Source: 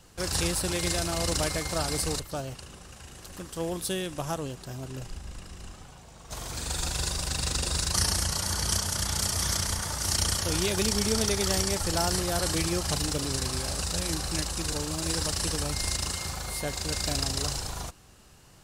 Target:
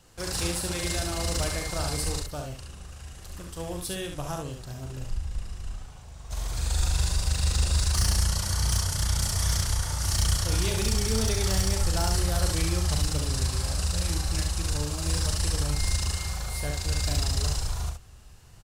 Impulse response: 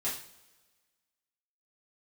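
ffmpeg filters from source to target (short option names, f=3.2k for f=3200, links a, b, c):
-af "asoftclip=type=hard:threshold=-19dB,aecho=1:1:41|68:0.376|0.562,asubboost=boost=4:cutoff=110,volume=-3dB"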